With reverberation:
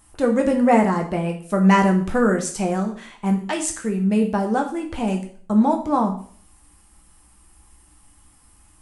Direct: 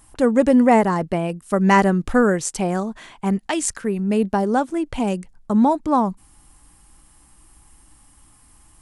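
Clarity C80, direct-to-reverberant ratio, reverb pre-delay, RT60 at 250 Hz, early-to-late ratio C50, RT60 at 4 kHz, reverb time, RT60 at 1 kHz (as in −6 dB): 14.0 dB, 1.0 dB, 7 ms, 0.55 s, 9.5 dB, 0.45 s, 0.50 s, 0.50 s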